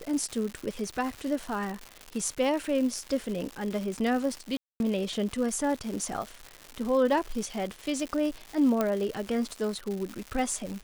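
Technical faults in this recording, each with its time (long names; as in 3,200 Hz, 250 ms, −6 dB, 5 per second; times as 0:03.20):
surface crackle 260 per second −33 dBFS
0:04.57–0:04.80: drop-out 231 ms
0:08.81: click −13 dBFS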